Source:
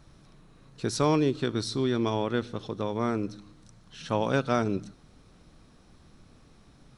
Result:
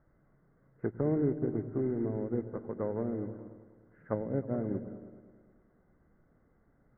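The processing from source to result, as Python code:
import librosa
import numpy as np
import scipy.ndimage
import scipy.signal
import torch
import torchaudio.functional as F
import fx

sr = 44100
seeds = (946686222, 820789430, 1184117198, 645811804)

p1 = fx.env_lowpass_down(x, sr, base_hz=370.0, full_db=-24.0)
p2 = fx.mod_noise(p1, sr, seeds[0], snr_db=20)
p3 = np.clip(p2, -10.0 ** (-30.0 / 20.0), 10.0 ** (-30.0 / 20.0))
p4 = p2 + F.gain(torch.from_numpy(p3), -9.0).numpy()
p5 = scipy.signal.sosfilt(scipy.signal.cheby1(6, 6, 2100.0, 'lowpass', fs=sr, output='sos'), p4)
p6 = fx.echo_opening(p5, sr, ms=105, hz=200, octaves=1, feedback_pct=70, wet_db=-6)
y = fx.upward_expand(p6, sr, threshold_db=-47.0, expansion=1.5)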